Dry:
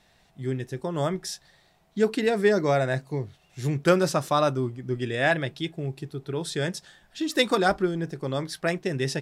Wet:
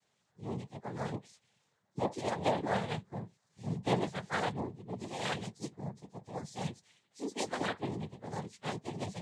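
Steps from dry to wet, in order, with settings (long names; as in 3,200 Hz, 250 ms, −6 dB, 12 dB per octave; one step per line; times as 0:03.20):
partials spread apart or drawn together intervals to 123%
cochlear-implant simulation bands 6
level −8.5 dB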